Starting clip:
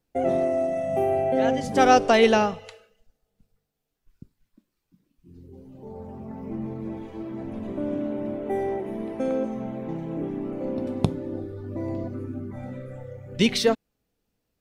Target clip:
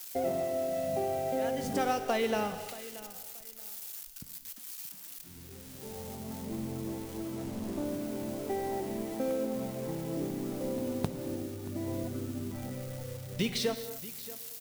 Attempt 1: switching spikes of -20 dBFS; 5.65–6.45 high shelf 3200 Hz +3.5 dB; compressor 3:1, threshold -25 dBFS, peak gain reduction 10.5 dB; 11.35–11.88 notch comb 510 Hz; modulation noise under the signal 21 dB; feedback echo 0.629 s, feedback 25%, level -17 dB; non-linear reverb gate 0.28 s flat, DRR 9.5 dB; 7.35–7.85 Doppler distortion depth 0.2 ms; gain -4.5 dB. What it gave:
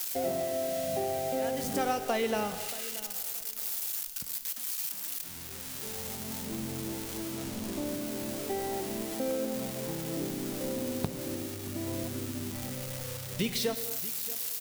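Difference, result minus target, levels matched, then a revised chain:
switching spikes: distortion +10 dB
switching spikes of -30.5 dBFS; 5.65–6.45 high shelf 3200 Hz +3.5 dB; compressor 3:1, threshold -25 dBFS, peak gain reduction 10.5 dB; 11.35–11.88 notch comb 510 Hz; modulation noise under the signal 21 dB; feedback echo 0.629 s, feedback 25%, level -17 dB; non-linear reverb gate 0.28 s flat, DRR 9.5 dB; 7.35–7.85 Doppler distortion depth 0.2 ms; gain -4.5 dB

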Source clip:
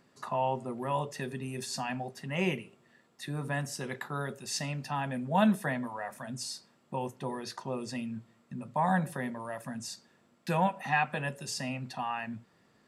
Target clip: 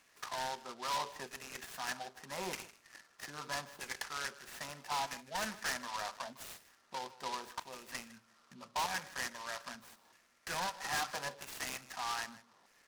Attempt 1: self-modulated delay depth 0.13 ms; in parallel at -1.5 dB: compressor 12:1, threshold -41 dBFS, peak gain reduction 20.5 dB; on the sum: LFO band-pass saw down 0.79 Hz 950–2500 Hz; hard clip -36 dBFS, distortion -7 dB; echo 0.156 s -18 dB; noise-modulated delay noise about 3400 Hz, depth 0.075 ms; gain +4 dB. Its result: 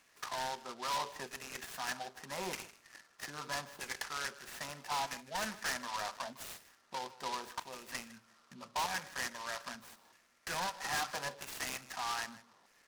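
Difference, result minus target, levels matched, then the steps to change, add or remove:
compressor: peak gain reduction -8.5 dB
change: compressor 12:1, threshold -50.5 dBFS, peak gain reduction 29.5 dB

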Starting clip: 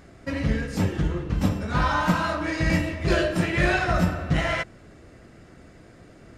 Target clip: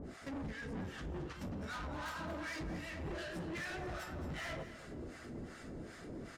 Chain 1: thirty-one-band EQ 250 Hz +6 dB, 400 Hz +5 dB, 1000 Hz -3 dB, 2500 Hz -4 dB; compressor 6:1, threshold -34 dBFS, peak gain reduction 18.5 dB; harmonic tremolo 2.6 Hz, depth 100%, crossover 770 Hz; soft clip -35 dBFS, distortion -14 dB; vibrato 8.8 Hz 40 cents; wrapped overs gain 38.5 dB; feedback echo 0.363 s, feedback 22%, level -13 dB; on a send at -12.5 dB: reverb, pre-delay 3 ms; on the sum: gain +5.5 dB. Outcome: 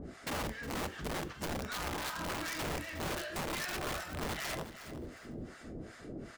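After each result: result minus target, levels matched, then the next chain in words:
echo 0.143 s late; soft clip: distortion -8 dB
thirty-one-band EQ 250 Hz +6 dB, 400 Hz +5 dB, 1000 Hz -3 dB, 2500 Hz -4 dB; compressor 6:1, threshold -34 dBFS, peak gain reduction 18.5 dB; harmonic tremolo 2.6 Hz, depth 100%, crossover 770 Hz; soft clip -35 dBFS, distortion -14 dB; vibrato 8.8 Hz 40 cents; wrapped overs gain 38.5 dB; feedback echo 0.22 s, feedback 22%, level -13 dB; on a send at -12.5 dB: reverb, pre-delay 3 ms; on the sum: gain +5.5 dB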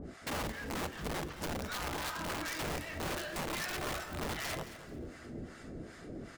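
soft clip: distortion -8 dB
thirty-one-band EQ 250 Hz +6 dB, 400 Hz +5 dB, 1000 Hz -3 dB, 2500 Hz -4 dB; compressor 6:1, threshold -34 dBFS, peak gain reduction 18.5 dB; harmonic tremolo 2.6 Hz, depth 100%, crossover 770 Hz; soft clip -45.5 dBFS, distortion -5 dB; vibrato 8.8 Hz 40 cents; wrapped overs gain 38.5 dB; feedback echo 0.22 s, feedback 22%, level -13 dB; on a send at -12.5 dB: reverb, pre-delay 3 ms; on the sum: gain +5.5 dB

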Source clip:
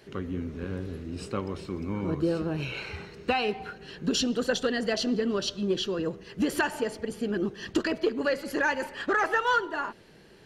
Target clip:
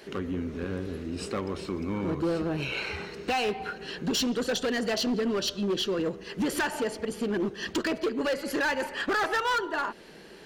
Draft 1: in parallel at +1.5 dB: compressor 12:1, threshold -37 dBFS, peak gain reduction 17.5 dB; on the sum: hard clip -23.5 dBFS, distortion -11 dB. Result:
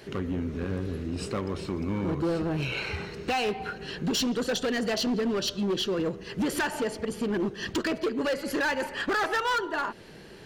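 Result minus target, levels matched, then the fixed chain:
125 Hz band +3.0 dB
in parallel at +1.5 dB: compressor 12:1, threshold -37 dBFS, peak gain reduction 17.5 dB + HPF 110 Hz 24 dB/oct; on the sum: hard clip -23.5 dBFS, distortion -11 dB

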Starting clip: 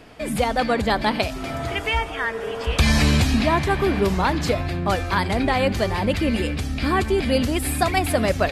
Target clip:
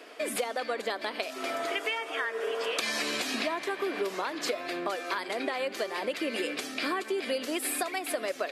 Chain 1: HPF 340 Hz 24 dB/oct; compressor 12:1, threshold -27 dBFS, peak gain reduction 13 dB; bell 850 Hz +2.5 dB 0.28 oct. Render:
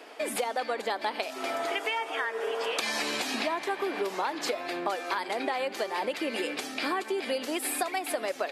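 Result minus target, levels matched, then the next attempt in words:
1000 Hz band +3.0 dB
HPF 340 Hz 24 dB/oct; compressor 12:1, threshold -27 dBFS, peak gain reduction 13 dB; bell 850 Hz -7 dB 0.28 oct

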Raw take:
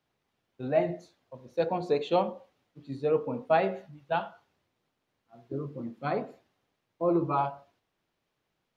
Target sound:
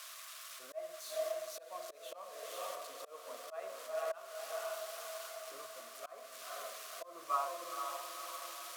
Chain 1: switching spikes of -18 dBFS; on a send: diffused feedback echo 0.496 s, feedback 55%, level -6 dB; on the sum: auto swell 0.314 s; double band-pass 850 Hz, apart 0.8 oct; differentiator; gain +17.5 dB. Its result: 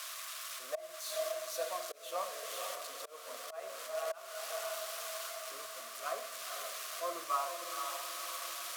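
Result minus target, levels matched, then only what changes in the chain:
switching spikes: distortion +6 dB
change: switching spikes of -24 dBFS

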